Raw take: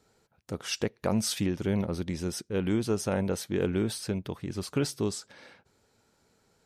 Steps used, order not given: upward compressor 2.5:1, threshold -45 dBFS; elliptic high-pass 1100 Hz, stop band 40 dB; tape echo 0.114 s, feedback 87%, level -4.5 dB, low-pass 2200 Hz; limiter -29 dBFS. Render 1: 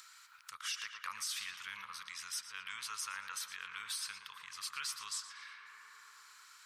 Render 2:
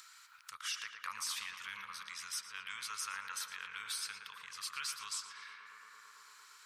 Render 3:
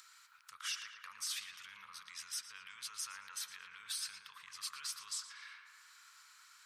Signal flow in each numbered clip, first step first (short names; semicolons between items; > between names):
tape echo > elliptic high-pass > limiter > upward compressor; elliptic high-pass > limiter > tape echo > upward compressor; upward compressor > limiter > tape echo > elliptic high-pass